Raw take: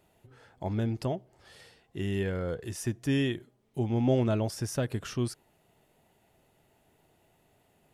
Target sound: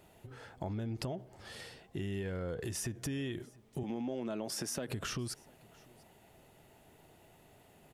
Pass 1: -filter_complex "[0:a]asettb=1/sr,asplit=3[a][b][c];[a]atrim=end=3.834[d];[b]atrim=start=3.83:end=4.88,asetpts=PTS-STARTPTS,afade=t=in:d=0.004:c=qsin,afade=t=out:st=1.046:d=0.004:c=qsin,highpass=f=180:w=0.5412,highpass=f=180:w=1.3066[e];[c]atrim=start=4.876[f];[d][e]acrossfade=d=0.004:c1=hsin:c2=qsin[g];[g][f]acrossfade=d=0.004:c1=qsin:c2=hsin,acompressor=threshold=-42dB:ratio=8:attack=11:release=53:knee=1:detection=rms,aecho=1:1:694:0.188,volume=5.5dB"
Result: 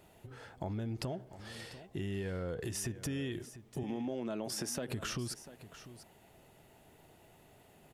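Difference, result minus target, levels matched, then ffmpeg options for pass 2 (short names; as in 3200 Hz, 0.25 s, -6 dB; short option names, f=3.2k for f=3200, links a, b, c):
echo-to-direct +10.5 dB
-filter_complex "[0:a]asettb=1/sr,asplit=3[a][b][c];[a]atrim=end=3.834[d];[b]atrim=start=3.83:end=4.88,asetpts=PTS-STARTPTS,afade=t=in:d=0.004:c=qsin,afade=t=out:st=1.046:d=0.004:c=qsin,highpass=f=180:w=0.5412,highpass=f=180:w=1.3066[e];[c]atrim=start=4.876[f];[d][e]acrossfade=d=0.004:c1=hsin:c2=qsin[g];[g][f]acrossfade=d=0.004:c1=qsin:c2=hsin,acompressor=threshold=-42dB:ratio=8:attack=11:release=53:knee=1:detection=rms,aecho=1:1:694:0.0562,volume=5.5dB"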